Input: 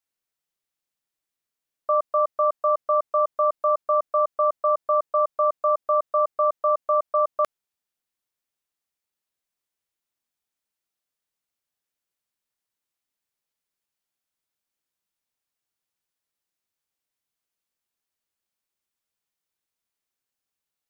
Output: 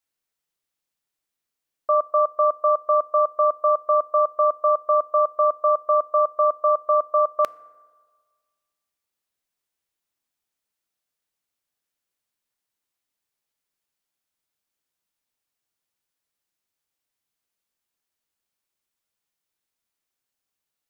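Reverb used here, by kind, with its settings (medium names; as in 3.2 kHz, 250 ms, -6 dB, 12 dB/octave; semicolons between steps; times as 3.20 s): FDN reverb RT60 1.6 s, low-frequency decay 0.8×, high-frequency decay 0.4×, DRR 19 dB; trim +2 dB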